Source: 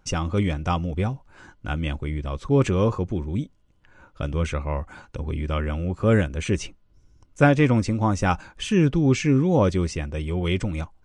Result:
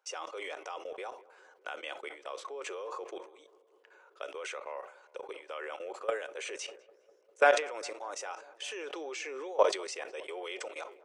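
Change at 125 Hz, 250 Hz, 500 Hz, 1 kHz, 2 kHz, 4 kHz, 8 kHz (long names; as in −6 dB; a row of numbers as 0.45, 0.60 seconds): below −40 dB, −28.5 dB, −8.0 dB, −6.5 dB, −6.0 dB, −6.5 dB, −6.0 dB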